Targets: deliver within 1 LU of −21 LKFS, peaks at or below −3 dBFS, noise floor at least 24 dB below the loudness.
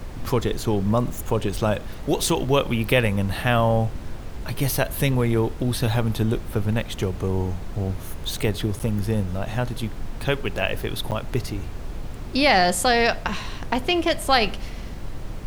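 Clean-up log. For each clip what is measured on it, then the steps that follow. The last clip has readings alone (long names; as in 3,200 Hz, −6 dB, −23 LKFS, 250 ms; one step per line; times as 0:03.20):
number of dropouts 2; longest dropout 8.5 ms; background noise floor −34 dBFS; target noise floor −48 dBFS; integrated loudness −23.5 LKFS; sample peak −4.0 dBFS; target loudness −21.0 LKFS
→ repair the gap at 0:08.79/0:11.11, 8.5 ms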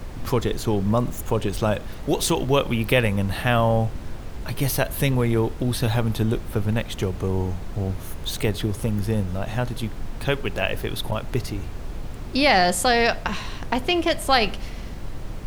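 number of dropouts 0; background noise floor −34 dBFS; target noise floor −48 dBFS
→ noise reduction from a noise print 14 dB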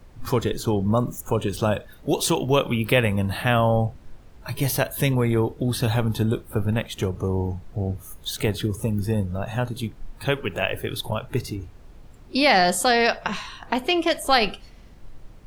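background noise floor −47 dBFS; target noise floor −48 dBFS
→ noise reduction from a noise print 6 dB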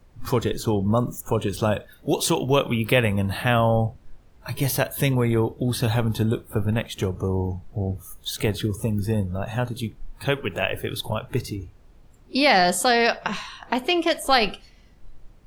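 background noise floor −52 dBFS; integrated loudness −23.5 LKFS; sample peak −4.0 dBFS; target loudness −21.0 LKFS
→ level +2.5 dB
brickwall limiter −3 dBFS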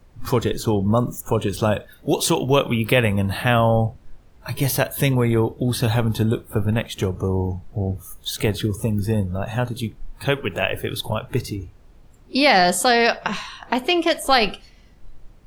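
integrated loudness −21.0 LKFS; sample peak −3.0 dBFS; background noise floor −49 dBFS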